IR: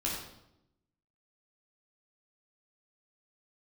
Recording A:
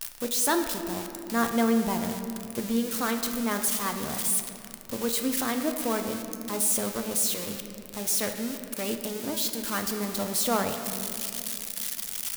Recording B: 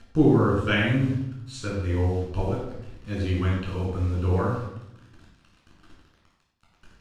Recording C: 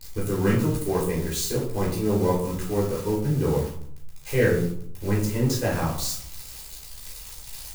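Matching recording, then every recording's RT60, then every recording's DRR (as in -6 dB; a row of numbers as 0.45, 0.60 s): B; 2.8, 0.85, 0.65 s; 5.0, -4.5, -5.0 dB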